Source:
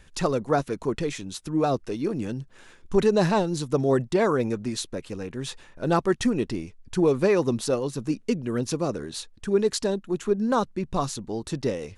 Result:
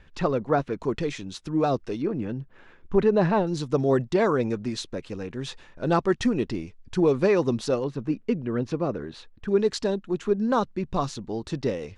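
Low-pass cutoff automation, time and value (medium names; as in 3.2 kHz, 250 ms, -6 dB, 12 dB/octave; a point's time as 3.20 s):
3.1 kHz
from 0.80 s 5.5 kHz
from 2.02 s 2.3 kHz
from 3.47 s 5.6 kHz
from 7.84 s 2.5 kHz
from 9.48 s 5.1 kHz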